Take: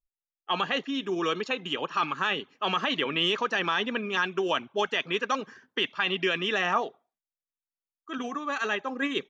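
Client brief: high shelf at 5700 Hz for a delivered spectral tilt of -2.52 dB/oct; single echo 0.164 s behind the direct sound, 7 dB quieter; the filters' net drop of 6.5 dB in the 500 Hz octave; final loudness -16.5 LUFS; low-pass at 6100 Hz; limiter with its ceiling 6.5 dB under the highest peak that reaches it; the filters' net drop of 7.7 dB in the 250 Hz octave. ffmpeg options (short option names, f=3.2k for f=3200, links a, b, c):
-af "lowpass=6.1k,equalizer=f=250:t=o:g=-8.5,equalizer=f=500:t=o:g=-5.5,highshelf=f=5.7k:g=7.5,alimiter=limit=-20dB:level=0:latency=1,aecho=1:1:164:0.447,volume=14.5dB"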